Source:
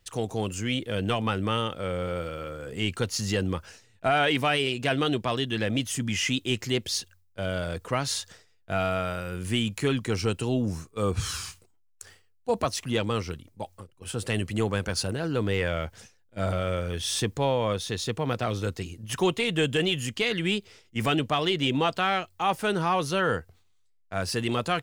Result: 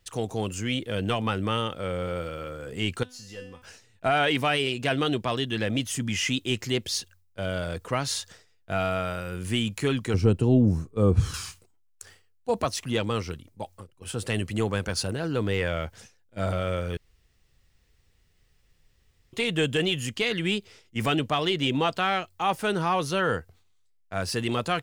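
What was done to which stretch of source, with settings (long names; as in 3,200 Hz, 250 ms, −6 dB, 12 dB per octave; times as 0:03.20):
0:03.03–0:03.62: tuned comb filter 250 Hz, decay 0.53 s, mix 90%
0:10.14–0:11.34: tilt shelving filter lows +8.5 dB, about 830 Hz
0:16.97–0:19.33: fill with room tone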